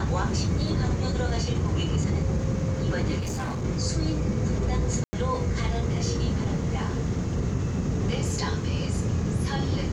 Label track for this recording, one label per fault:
3.190000	3.650000	clipped -27 dBFS
5.040000	5.130000	gap 90 ms

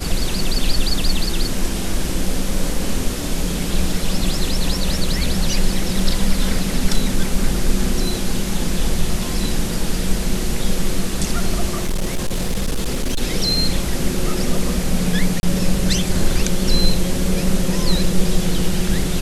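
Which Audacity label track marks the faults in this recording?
11.820000	13.230000	clipped -15.5 dBFS
15.400000	15.430000	gap 31 ms

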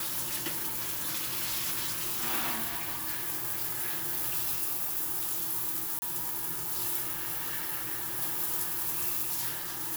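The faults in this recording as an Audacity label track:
5.990000	6.020000	gap 30 ms

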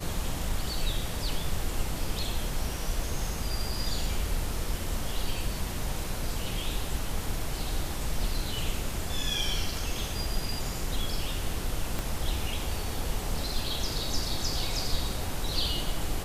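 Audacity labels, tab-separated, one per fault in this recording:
11.990000	11.990000	pop

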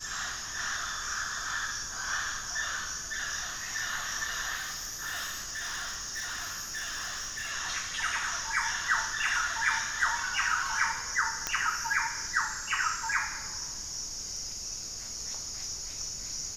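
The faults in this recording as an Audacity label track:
4.550000	7.520000	clipped -31.5 dBFS
11.470000	11.470000	pop -13 dBFS

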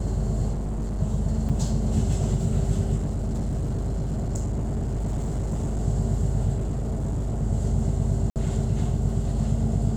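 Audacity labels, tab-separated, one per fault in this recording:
0.520000	1.010000	clipped -25 dBFS
1.490000	1.500000	gap 5.6 ms
2.960000	5.800000	clipped -23 dBFS
6.560000	7.430000	clipped -23 dBFS
8.300000	8.360000	gap 58 ms

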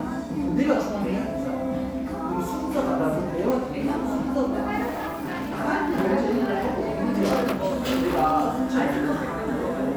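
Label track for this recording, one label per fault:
3.500000	3.500000	pop -14 dBFS
4.890000	5.610000	clipped -26 dBFS

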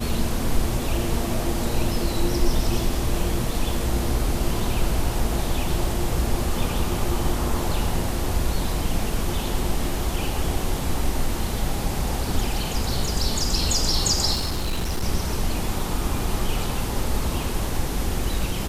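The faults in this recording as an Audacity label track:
14.330000	15.040000	clipped -20.5 dBFS

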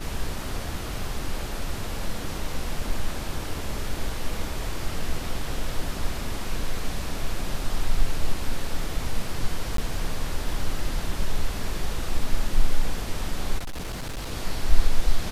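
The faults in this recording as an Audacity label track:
9.770000	9.780000	gap
13.580000	14.320000	clipped -28 dBFS

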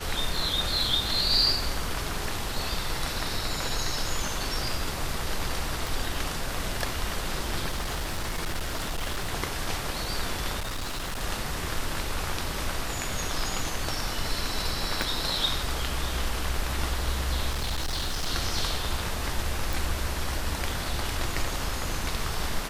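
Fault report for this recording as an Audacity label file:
5.870000	5.870000	pop
7.700000	9.340000	clipped -25.5 dBFS
10.590000	11.220000	clipped -28.5 dBFS
15.020000	15.020000	pop
17.500000	18.290000	clipped -25 dBFS
19.730000	19.730000	pop

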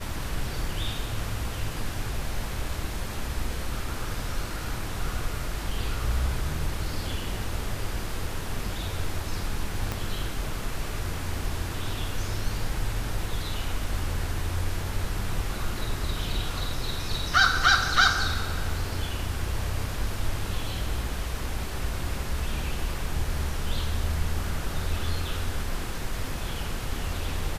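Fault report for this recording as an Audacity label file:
9.920000	9.920000	pop -14 dBFS

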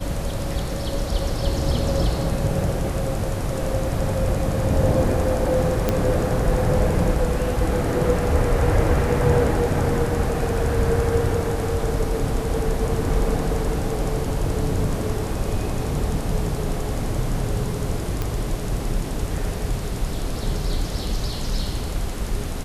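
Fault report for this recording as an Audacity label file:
5.890000	5.890000	pop -6 dBFS
18.220000	18.220000	pop -11 dBFS

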